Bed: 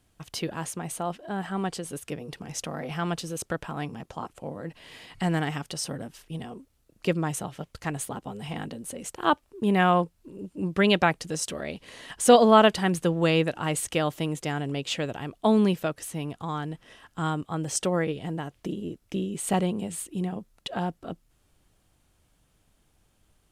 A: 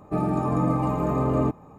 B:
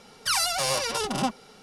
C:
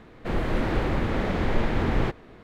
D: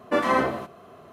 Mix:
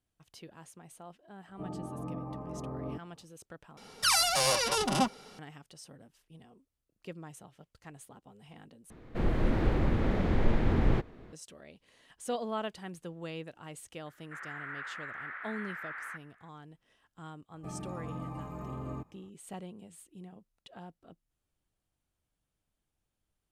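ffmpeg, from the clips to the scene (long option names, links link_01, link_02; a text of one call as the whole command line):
ffmpeg -i bed.wav -i cue0.wav -i cue1.wav -i cue2.wav -filter_complex "[1:a]asplit=2[link_01][link_02];[3:a]asplit=2[link_03][link_04];[0:a]volume=-18.5dB[link_05];[link_01]lowpass=1200[link_06];[link_03]lowshelf=frequency=450:gain=7[link_07];[link_04]asuperpass=centerf=1600:order=4:qfactor=2.4[link_08];[link_02]equalizer=frequency=440:width=0.49:gain=-8[link_09];[link_05]asplit=3[link_10][link_11][link_12];[link_10]atrim=end=3.774[link_13];[2:a]atrim=end=1.62,asetpts=PTS-STARTPTS,volume=-1dB[link_14];[link_11]atrim=start=5.386:end=8.904[link_15];[link_07]atrim=end=2.43,asetpts=PTS-STARTPTS,volume=-8dB[link_16];[link_12]atrim=start=11.326[link_17];[link_06]atrim=end=1.78,asetpts=PTS-STARTPTS,volume=-16dB,afade=type=in:duration=0.004:curve=hsin,afade=type=out:start_time=1.776:duration=0.004:curve=hsin,adelay=1470[link_18];[link_08]atrim=end=2.43,asetpts=PTS-STARTPTS,volume=-2.5dB,afade=type=in:duration=0.004:curve=hsin,afade=type=out:start_time=2.426:duration=0.004:curve=hsin,adelay=14060[link_19];[link_09]atrim=end=1.78,asetpts=PTS-STARTPTS,volume=-12.5dB,afade=type=in:duration=0.004:curve=hsin,afade=type=out:start_time=1.776:duration=0.004:curve=hsin,adelay=17520[link_20];[link_13][link_14]acrossfade=duration=0.004:curve1=hsin:curve2=hsin[link_21];[link_21][link_15]acrossfade=duration=0.004:curve1=hsin:curve2=hsin[link_22];[link_22][link_16]acrossfade=duration=0.004:curve1=hsin:curve2=hsin[link_23];[link_23][link_17]acrossfade=duration=0.004:curve1=hsin:curve2=hsin[link_24];[link_24][link_18][link_19][link_20]amix=inputs=4:normalize=0" out.wav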